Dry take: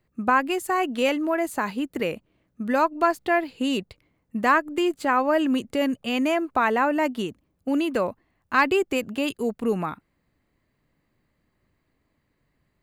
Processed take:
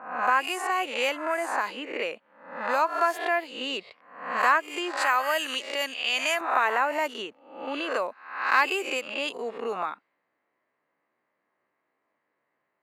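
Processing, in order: spectral swells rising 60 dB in 0.61 s; HPF 610 Hz 12 dB/oct; low-pass opened by the level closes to 1700 Hz, open at -20 dBFS; 4.97–6.41 tilt +3.5 dB/oct; in parallel at -2.5 dB: compressor, threshold -31 dBFS, peak gain reduction 17 dB; on the sum: gain -4 dB

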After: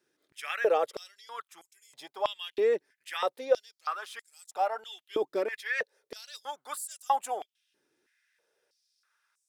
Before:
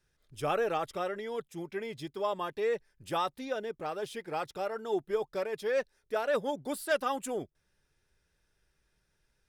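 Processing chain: stepped high-pass 3.1 Hz 310–7500 Hz

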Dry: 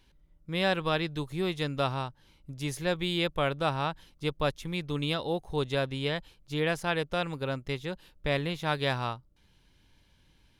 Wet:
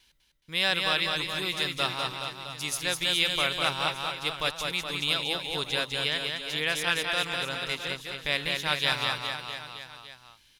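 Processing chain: tilt shelf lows -10 dB, about 1200 Hz; gate with hold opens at -56 dBFS; on a send: reverse bouncing-ball echo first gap 0.2 s, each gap 1.1×, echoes 5

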